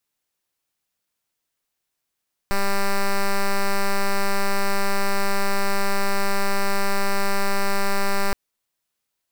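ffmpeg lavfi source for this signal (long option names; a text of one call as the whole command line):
ffmpeg -f lavfi -i "aevalsrc='0.112*(2*lt(mod(198*t,1),0.06)-1)':duration=5.82:sample_rate=44100" out.wav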